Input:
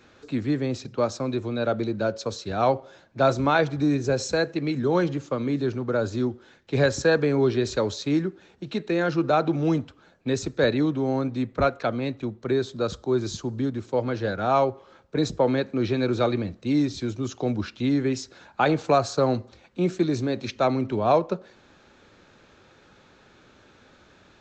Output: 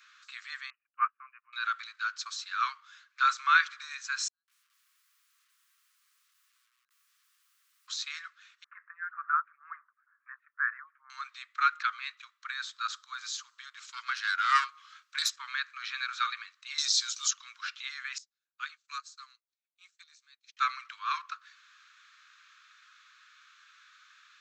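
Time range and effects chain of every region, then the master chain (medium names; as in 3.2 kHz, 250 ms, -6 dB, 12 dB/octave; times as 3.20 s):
0.70–1.53 s: brick-wall FIR low-pass 3 kHz + peaking EQ 880 Hz +7.5 dB 1.8 oct + upward expansion 2.5:1, over -40 dBFS
4.28–7.88 s: inverse Chebyshev low-pass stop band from 840 Hz, stop band 60 dB + bit-crushed delay 182 ms, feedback 35%, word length 9-bit, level -13 dB
8.64–11.10 s: steep low-pass 1.8 kHz 48 dB/octave + lamp-driven phase shifter 2.1 Hz
13.77–15.36 s: self-modulated delay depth 0.1 ms + peaking EQ 6.8 kHz +7.5 dB 2.9 oct
16.78–17.31 s: resonant high shelf 3.3 kHz +12.5 dB, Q 1.5 + three bands compressed up and down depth 70%
18.18–20.57 s: pre-emphasis filter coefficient 0.8 + upward expansion 2.5:1, over -51 dBFS
whole clip: steep high-pass 1.1 kHz 96 dB/octave; dynamic bell 1.5 kHz, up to +4 dB, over -45 dBFS, Q 1.8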